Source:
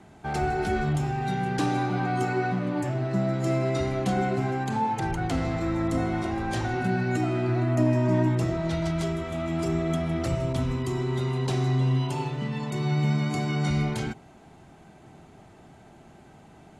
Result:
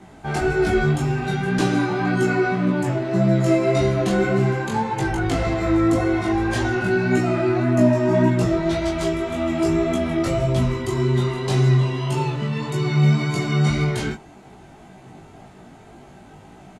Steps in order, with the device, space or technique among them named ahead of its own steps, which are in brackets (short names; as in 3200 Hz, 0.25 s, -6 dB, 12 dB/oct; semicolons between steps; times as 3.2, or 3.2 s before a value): double-tracked vocal (doubler 21 ms -3.5 dB; chorus 1.8 Hz, delay 15.5 ms, depth 3.4 ms); gain +8 dB